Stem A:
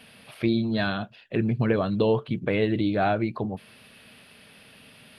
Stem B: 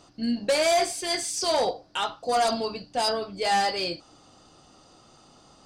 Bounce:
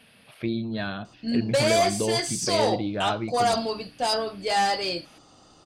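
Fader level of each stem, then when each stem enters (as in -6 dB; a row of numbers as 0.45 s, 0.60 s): -4.5 dB, +0.5 dB; 0.00 s, 1.05 s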